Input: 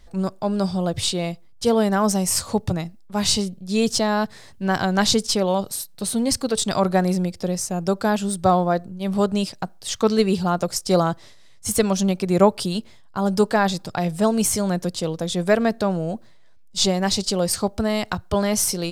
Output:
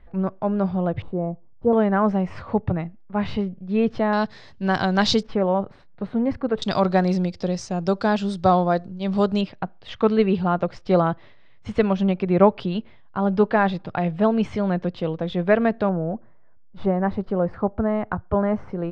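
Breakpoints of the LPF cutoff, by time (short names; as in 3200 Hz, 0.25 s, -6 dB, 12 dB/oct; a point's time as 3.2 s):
LPF 24 dB/oct
2400 Hz
from 1.02 s 1000 Hz
from 1.73 s 2300 Hz
from 4.13 s 4900 Hz
from 5.23 s 2000 Hz
from 6.62 s 5000 Hz
from 9.41 s 2900 Hz
from 15.89 s 1600 Hz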